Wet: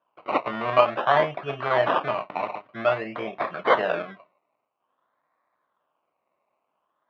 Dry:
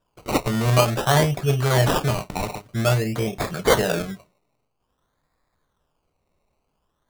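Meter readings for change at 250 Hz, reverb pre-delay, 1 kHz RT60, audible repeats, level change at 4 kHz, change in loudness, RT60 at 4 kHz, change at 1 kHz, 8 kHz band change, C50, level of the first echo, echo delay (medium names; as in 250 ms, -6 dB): -10.0 dB, no reverb, no reverb, no echo, -8.5 dB, -3.0 dB, no reverb, +2.0 dB, under -30 dB, no reverb, no echo, no echo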